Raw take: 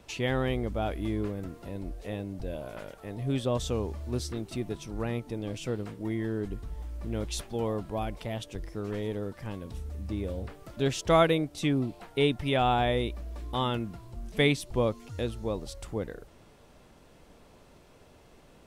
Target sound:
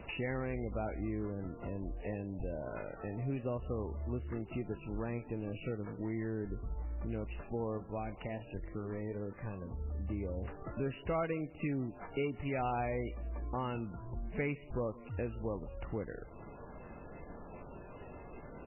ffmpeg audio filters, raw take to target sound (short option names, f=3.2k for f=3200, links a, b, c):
-filter_complex "[0:a]asplit=3[a][b][c];[a]afade=t=out:st=7.77:d=0.02[d];[b]flanger=delay=9.2:depth=3.9:regen=-64:speed=1.5:shape=sinusoidal,afade=t=in:st=7.77:d=0.02,afade=t=out:st=9.8:d=0.02[e];[c]afade=t=in:st=9.8:d=0.02[f];[d][e][f]amix=inputs=3:normalize=0,acompressor=threshold=-48dB:ratio=2.5,asoftclip=type=hard:threshold=-34dB,asplit=2[g][h];[h]adelay=163.3,volume=-22dB,highshelf=f=4k:g=-3.67[i];[g][i]amix=inputs=2:normalize=0,volume=7.5dB" -ar 11025 -c:a libmp3lame -b:a 8k